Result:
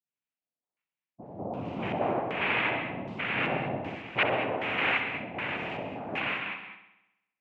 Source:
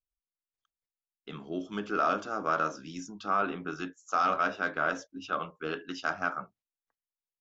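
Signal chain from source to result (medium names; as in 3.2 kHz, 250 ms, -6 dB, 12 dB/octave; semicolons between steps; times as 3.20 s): spectrogram pixelated in time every 200 ms; peaking EQ 160 Hz +5.5 dB 1.9 oct; band-stop 6.1 kHz, Q 5.4; phase dispersion highs, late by 84 ms, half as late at 1.3 kHz; noise-vocoded speech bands 4; wow and flutter 22 cents; LFO low-pass square 1.3 Hz 670–2600 Hz; bucket-brigade echo 65 ms, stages 2048, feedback 61%, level -10 dB; gated-style reverb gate 240 ms rising, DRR 8 dB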